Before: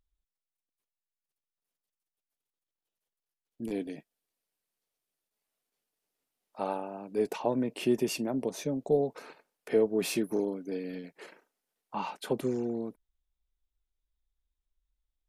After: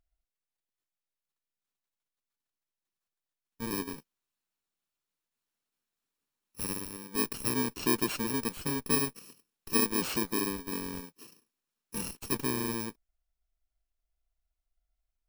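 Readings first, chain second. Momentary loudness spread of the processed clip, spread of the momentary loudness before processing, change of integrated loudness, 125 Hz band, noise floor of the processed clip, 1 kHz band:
13 LU, 14 LU, +0.5 dB, +1.5 dB, under -85 dBFS, -0.5 dB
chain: FFT order left unsorted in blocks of 64 samples; high shelf 6600 Hz -5 dB; in parallel at -8 dB: Schmitt trigger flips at -35.5 dBFS

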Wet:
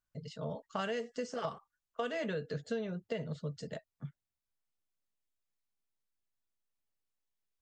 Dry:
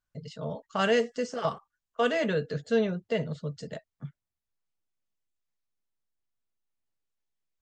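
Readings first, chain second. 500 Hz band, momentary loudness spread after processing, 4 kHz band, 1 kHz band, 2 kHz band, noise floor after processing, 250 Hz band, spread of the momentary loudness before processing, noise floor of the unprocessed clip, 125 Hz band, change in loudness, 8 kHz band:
-10.0 dB, 11 LU, -9.5 dB, -9.0 dB, -10.5 dB, under -85 dBFS, -9.0 dB, 19 LU, under -85 dBFS, -6.0 dB, -10.0 dB, n/a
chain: compressor 10:1, threshold -29 dBFS, peak gain reduction 10 dB; gain -3.5 dB

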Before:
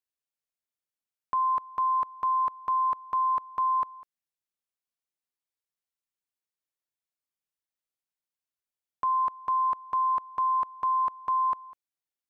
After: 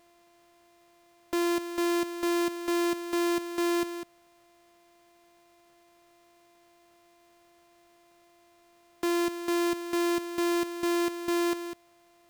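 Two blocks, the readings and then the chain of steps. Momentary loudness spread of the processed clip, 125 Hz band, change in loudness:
6 LU, n/a, -1.5 dB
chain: sample sorter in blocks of 128 samples; power-law curve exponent 0.5; gain -2.5 dB

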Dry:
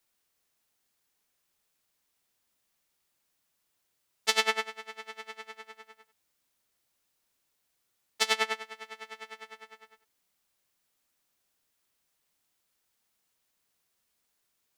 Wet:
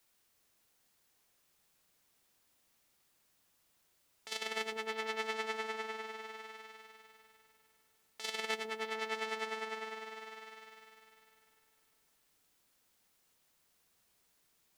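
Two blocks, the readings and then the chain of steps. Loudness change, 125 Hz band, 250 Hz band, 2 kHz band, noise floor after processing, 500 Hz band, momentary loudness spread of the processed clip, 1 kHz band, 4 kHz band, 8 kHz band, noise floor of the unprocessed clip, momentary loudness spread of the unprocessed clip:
-9.0 dB, n/a, +2.0 dB, -5.0 dB, -74 dBFS, -0.5 dB, 18 LU, -3.5 dB, -8.0 dB, -10.0 dB, -78 dBFS, 21 LU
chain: dynamic EQ 1200 Hz, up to -5 dB, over -40 dBFS, Q 0.79; negative-ratio compressor -34 dBFS, ratio -0.5; on a send: repeats that get brighter 0.15 s, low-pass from 400 Hz, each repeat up 1 oct, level -3 dB; on the sum: gain -1 dB

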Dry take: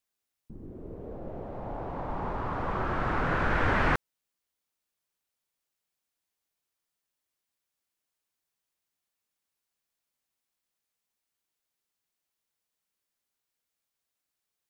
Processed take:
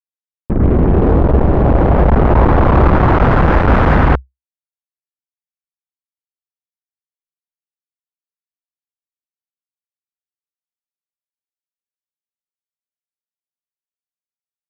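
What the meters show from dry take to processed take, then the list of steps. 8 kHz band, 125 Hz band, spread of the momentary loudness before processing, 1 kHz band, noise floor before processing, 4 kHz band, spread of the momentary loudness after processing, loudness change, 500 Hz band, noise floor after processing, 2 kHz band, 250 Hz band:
n/a, +24.0 dB, 17 LU, +16.0 dB, under -85 dBFS, +10.5 dB, 4 LU, +18.5 dB, +20.5 dB, under -85 dBFS, +10.0 dB, +22.0 dB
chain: Wiener smoothing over 41 samples; in parallel at +3 dB: compressor, threshold -36 dBFS, peak gain reduction 14 dB; on the sum: low shelf 460 Hz +5 dB; on a send: loudspeakers at several distances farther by 42 m -9 dB, 67 m -5 dB; on the sum: fuzz box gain 38 dB, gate -46 dBFS; LPF 1300 Hz 12 dB/oct; bell 65 Hz +9.5 dB 0.48 oct; AGC; gain -1 dB

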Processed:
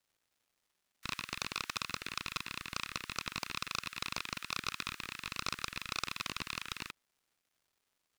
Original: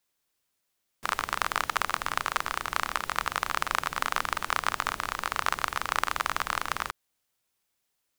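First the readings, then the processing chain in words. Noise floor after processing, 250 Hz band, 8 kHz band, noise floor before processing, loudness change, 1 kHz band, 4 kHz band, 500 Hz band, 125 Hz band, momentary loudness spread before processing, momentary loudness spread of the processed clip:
-83 dBFS, -3.5 dB, -6.5 dB, -79 dBFS, -9.5 dB, -15.5 dB, -3.5 dB, -12.5 dB, -3.5 dB, 4 LU, 4 LU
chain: steep high-pass 1200 Hz 72 dB/oct; crackle 420/s -57 dBFS; Doppler distortion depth 0.68 ms; gain -8 dB

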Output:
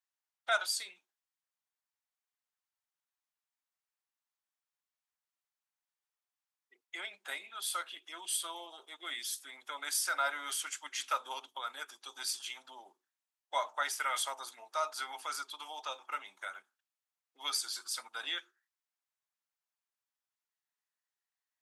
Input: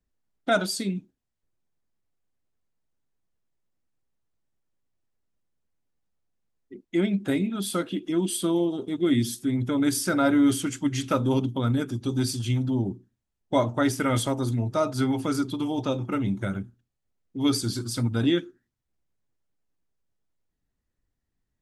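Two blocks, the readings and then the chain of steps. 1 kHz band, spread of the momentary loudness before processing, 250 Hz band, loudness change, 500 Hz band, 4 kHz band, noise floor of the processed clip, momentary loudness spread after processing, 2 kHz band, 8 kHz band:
-5.0 dB, 6 LU, -40.0 dB, -11.0 dB, -17.5 dB, -3.5 dB, under -85 dBFS, 12 LU, -3.5 dB, -3.5 dB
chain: HPF 840 Hz 24 dB/oct; gain -3.5 dB

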